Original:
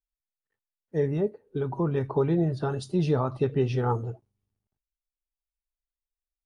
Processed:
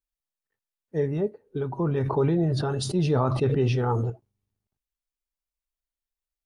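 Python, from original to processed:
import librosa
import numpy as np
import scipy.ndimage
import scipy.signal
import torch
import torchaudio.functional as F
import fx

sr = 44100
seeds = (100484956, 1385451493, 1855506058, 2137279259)

y = fx.sustainer(x, sr, db_per_s=21.0, at=(1.82, 4.1))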